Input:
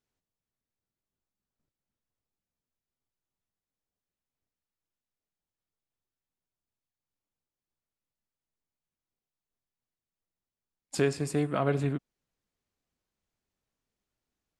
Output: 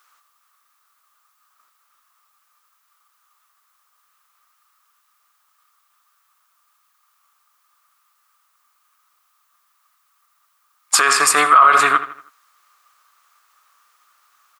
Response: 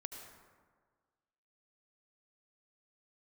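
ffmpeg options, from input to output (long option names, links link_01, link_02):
-filter_complex "[0:a]highpass=frequency=1200:width_type=q:width=11,highshelf=frequency=9700:gain=8,asplit=2[link_01][link_02];[link_02]adelay=80,lowpass=frequency=4500:poles=1,volume=-13.5dB,asplit=2[link_03][link_04];[link_04]adelay=80,lowpass=frequency=4500:poles=1,volume=0.44,asplit=2[link_05][link_06];[link_06]adelay=80,lowpass=frequency=4500:poles=1,volume=0.44,asplit=2[link_07][link_08];[link_08]adelay=80,lowpass=frequency=4500:poles=1,volume=0.44[link_09];[link_01][link_03][link_05][link_07][link_09]amix=inputs=5:normalize=0,alimiter=level_in=25.5dB:limit=-1dB:release=50:level=0:latency=1,volume=-1.5dB"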